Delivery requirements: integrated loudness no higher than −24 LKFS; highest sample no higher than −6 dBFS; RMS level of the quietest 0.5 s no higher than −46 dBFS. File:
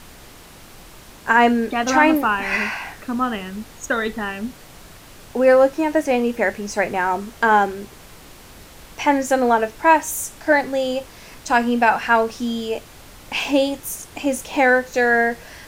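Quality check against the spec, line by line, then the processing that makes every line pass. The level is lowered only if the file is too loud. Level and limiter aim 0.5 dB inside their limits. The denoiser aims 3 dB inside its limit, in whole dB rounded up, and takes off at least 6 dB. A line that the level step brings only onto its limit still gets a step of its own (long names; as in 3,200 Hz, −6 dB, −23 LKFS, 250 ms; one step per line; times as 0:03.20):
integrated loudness −19.5 LKFS: out of spec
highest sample −3.0 dBFS: out of spec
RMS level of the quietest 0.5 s −43 dBFS: out of spec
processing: level −5 dB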